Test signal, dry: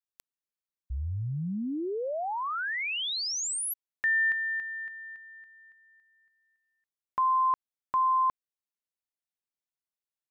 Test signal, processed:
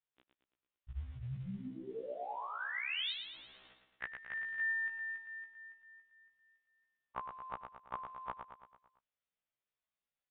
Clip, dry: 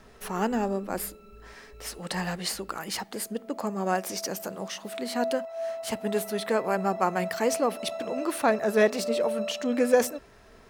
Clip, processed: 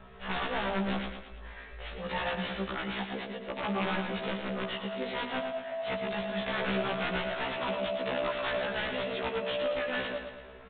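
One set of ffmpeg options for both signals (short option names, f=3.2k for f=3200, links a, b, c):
-af "afftfilt=real='re*lt(hypot(re,im),0.251)':imag='im*lt(hypot(re,im),0.251)':win_size=1024:overlap=0.75,equalizer=f=310:t=o:w=0.36:g=-9,acrusher=bits=6:mode=log:mix=0:aa=0.000001,aeval=exprs='(mod(20*val(0)+1,2)-1)/20':c=same,aecho=1:1:112|224|336|448|560|672:0.447|0.237|0.125|0.0665|0.0352|0.0187,aresample=8000,aresample=44100,afftfilt=real='re*1.73*eq(mod(b,3),0)':imag='im*1.73*eq(mod(b,3),0)':win_size=2048:overlap=0.75,volume=4dB"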